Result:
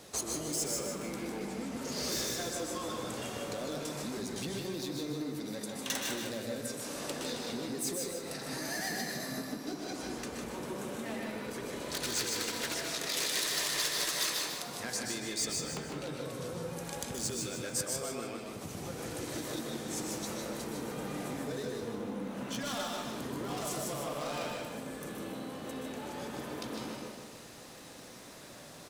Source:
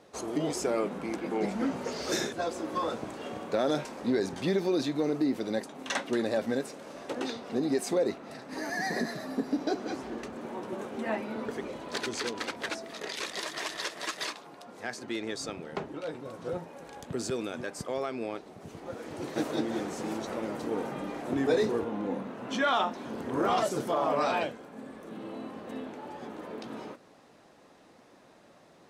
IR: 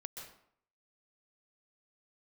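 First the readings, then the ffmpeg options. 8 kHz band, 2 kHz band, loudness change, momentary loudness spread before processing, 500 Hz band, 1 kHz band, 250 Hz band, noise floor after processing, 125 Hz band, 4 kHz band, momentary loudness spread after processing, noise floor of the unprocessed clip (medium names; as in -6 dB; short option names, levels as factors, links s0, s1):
+7.5 dB, -3.0 dB, -3.5 dB, 13 LU, -7.5 dB, -7.5 dB, -6.0 dB, -50 dBFS, -1.0 dB, +2.5 dB, 9 LU, -57 dBFS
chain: -filter_complex "[0:a]acrossover=split=630[s0][s1];[s1]asoftclip=type=tanh:threshold=0.0251[s2];[s0][s2]amix=inputs=2:normalize=0,lowshelf=f=200:g=11,asplit=2[s3][s4];[s4]volume=35.5,asoftclip=hard,volume=0.0282,volume=0.631[s5];[s3][s5]amix=inputs=2:normalize=0,acompressor=threshold=0.0158:ratio=5,aecho=1:1:153|306|459|612:0.501|0.17|0.0579|0.0197,crystalizer=i=6:c=0[s6];[1:a]atrim=start_sample=2205[s7];[s6][s7]afir=irnorm=-1:irlink=0"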